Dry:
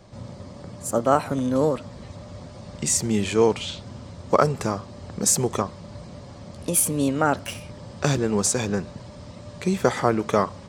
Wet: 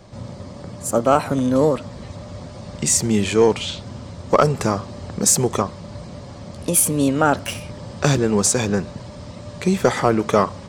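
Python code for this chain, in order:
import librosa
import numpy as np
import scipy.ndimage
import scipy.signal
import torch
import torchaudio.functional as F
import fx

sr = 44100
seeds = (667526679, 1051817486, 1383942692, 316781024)

p1 = fx.rider(x, sr, range_db=3, speed_s=0.5)
p2 = x + F.gain(torch.from_numpy(p1), -1.5).numpy()
y = 10.0 ** (-2.0 / 20.0) * np.tanh(p2 / 10.0 ** (-2.0 / 20.0))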